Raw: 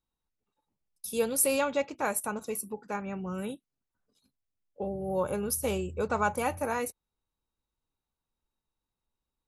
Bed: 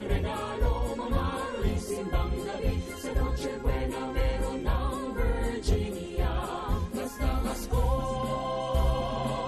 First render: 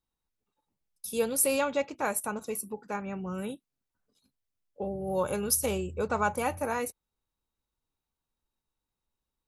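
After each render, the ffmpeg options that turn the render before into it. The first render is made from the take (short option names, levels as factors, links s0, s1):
-filter_complex "[0:a]asettb=1/sr,asplit=3[s0][s1][s2];[s0]atrim=end=5.074[s3];[s1]atrim=start=5.07:end=5.66,asetpts=PTS-STARTPTS,afade=t=in:d=0.004:c=qsin,afade=t=out:st=0.586:d=0.004:c=qsin,equalizer=f=5500:t=o:w=2.7:g=7.5[s4];[s2]atrim=start=5.656[s5];[s3][s4]acrossfade=d=0.004:c1=hsin:c2=qsin[s6];[s6][s5]acrossfade=d=0.004:c1=qsin:c2=hsin"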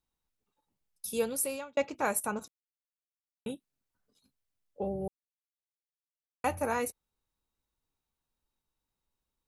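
-filter_complex "[0:a]asplit=6[s0][s1][s2][s3][s4][s5];[s0]atrim=end=1.77,asetpts=PTS-STARTPTS,afade=t=out:st=1.06:d=0.71[s6];[s1]atrim=start=1.77:end=2.48,asetpts=PTS-STARTPTS,afade=t=in:d=0.004:c=hsin,afade=t=out:st=0.706:d=0.004:c=hsin[s7];[s2]atrim=start=2.48:end=3.46,asetpts=PTS-STARTPTS,volume=0[s8];[s3]atrim=start=3.46:end=5.08,asetpts=PTS-STARTPTS,afade=t=in:d=0.004:c=hsin,afade=t=out:st=1.616:d=0.004:c=hsin[s9];[s4]atrim=start=5.08:end=6.44,asetpts=PTS-STARTPTS,volume=0[s10];[s5]atrim=start=6.44,asetpts=PTS-STARTPTS,afade=t=in:d=0.004:c=hsin[s11];[s6][s7][s8][s9][s10][s11]concat=n=6:v=0:a=1"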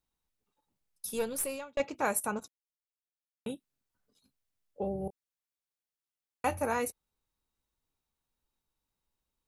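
-filter_complex "[0:a]asettb=1/sr,asplit=3[s0][s1][s2];[s0]atrim=end=1.084[s3];[s1]atrim=start=1.08:end=1.8,asetpts=PTS-STARTPTS,afade=t=in:d=0.004:c=qsin,afade=t=out:st=0.716:d=0.004:c=qsin,aeval=exprs='(tanh(15.8*val(0)+0.35)-tanh(0.35))/15.8':c=same[s4];[s2]atrim=start=1.796[s5];[s3][s4]acrossfade=d=0.004:c1=hsin:c2=qsin[s6];[s6][s5]acrossfade=d=0.004:c1=qsin:c2=hsin,asettb=1/sr,asplit=3[s7][s8][s9];[s7]atrim=end=2.404[s10];[s8]atrim=start=2.4:end=3.53,asetpts=PTS-STARTPTS,afade=t=in:d=0.004:c=qsin,afade=t=out:st=1.126:d=0.004:c=qsin,agate=range=0.355:threshold=0.00282:ratio=16:release=100:detection=peak[s11];[s9]atrim=start=3.526[s12];[s10][s11]acrossfade=d=0.004:c1=hsin:c2=qsin[s13];[s13][s12]acrossfade=d=0.004:c1=qsin:c2=hsin,asettb=1/sr,asplit=3[s14][s15][s16];[s14]atrim=end=4.944[s17];[s15]atrim=start=4.94:end=6.61,asetpts=PTS-STARTPTS,afade=t=in:d=0.004:c=qsin,afade=t=out:st=1.666:d=0.004:c=qsin,asplit=2[s18][s19];[s19]adelay=25,volume=0.251[s20];[s18][s20]amix=inputs=2:normalize=0,atrim=end_sample=73647[s21];[s16]atrim=start=6.606[s22];[s17][s21]acrossfade=d=0.004:c1=hsin:c2=qsin[s23];[s23][s22]acrossfade=d=0.004:c1=qsin:c2=hsin"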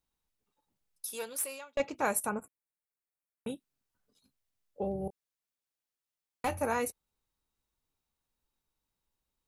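-filter_complex "[0:a]asettb=1/sr,asplit=3[s0][s1][s2];[s0]atrim=end=1.054[s3];[s1]atrim=start=1.05:end=1.76,asetpts=PTS-STARTPTS,afade=t=in:d=0.004:c=qsin,afade=t=out:st=0.706:d=0.004:c=qsin,highpass=f=980:p=1[s4];[s2]atrim=start=1.756[s5];[s3][s4]acrossfade=d=0.004:c1=hsin:c2=qsin[s6];[s6][s5]acrossfade=d=0.004:c1=qsin:c2=hsin,asettb=1/sr,asplit=3[s7][s8][s9];[s7]atrim=end=2.294[s10];[s8]atrim=start=2.29:end=3.47,asetpts=PTS-STARTPTS,afade=t=in:d=0.004:c=qsin,afade=t=out:st=1.176:d=0.004:c=qsin,asuperstop=centerf=4500:order=12:qfactor=0.88[s11];[s9]atrim=start=3.466[s12];[s10][s11]acrossfade=d=0.004:c1=hsin:c2=qsin[s13];[s13][s12]acrossfade=d=0.004:c1=qsin:c2=hsin,asettb=1/sr,asplit=3[s14][s15][s16];[s14]atrim=end=4.884[s17];[s15]atrim=start=4.88:end=6.55,asetpts=PTS-STARTPTS,afade=t=in:d=0.004:c=qsin,afade=t=out:st=1.666:d=0.004:c=qsin,asoftclip=type=hard:threshold=0.0501[s18];[s16]atrim=start=6.546[s19];[s17][s18]acrossfade=d=0.004:c1=hsin:c2=qsin[s20];[s20][s19]acrossfade=d=0.004:c1=qsin:c2=hsin"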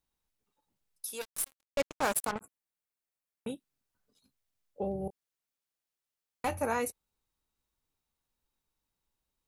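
-filter_complex "[0:a]asettb=1/sr,asplit=3[s0][s1][s2];[s0]atrim=end=1.214[s3];[s1]atrim=start=1.21:end=2.41,asetpts=PTS-STARTPTS,afade=t=in:d=0.004:c=qsin,afade=t=out:st=1.196:d=0.004:c=qsin,acrusher=bits=4:mix=0:aa=0.5[s4];[s2]atrim=start=2.406[s5];[s3][s4]acrossfade=d=0.004:c1=hsin:c2=qsin[s6];[s6][s5]acrossfade=d=0.004:c1=qsin:c2=hsin"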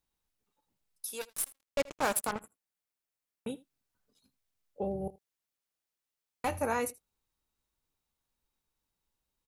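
-af "aecho=1:1:80:0.0841"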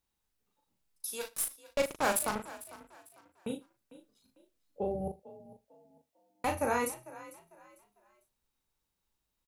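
-filter_complex "[0:a]asplit=2[s0][s1];[s1]adelay=38,volume=0.562[s2];[s0][s2]amix=inputs=2:normalize=0,asplit=4[s3][s4][s5][s6];[s4]adelay=449,afreqshift=40,volume=0.133[s7];[s5]adelay=898,afreqshift=80,volume=0.0412[s8];[s6]adelay=1347,afreqshift=120,volume=0.0129[s9];[s3][s7][s8][s9]amix=inputs=4:normalize=0"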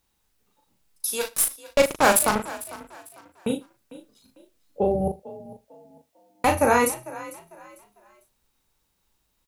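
-af "volume=3.76"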